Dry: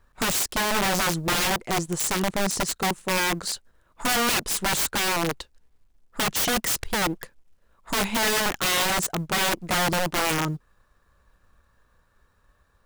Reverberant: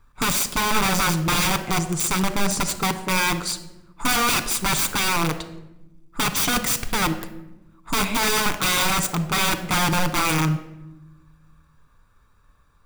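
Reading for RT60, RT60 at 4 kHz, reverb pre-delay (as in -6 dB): 0.95 s, 0.60 s, 7 ms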